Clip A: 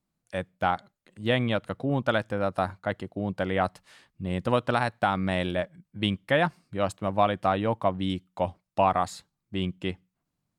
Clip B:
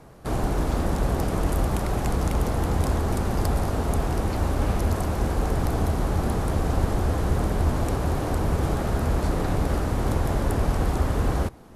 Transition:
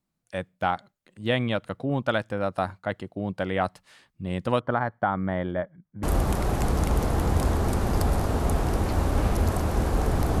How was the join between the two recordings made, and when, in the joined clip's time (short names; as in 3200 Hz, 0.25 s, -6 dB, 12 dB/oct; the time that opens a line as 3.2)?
clip A
4.6–6.03 polynomial smoothing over 41 samples
6.03 switch to clip B from 1.47 s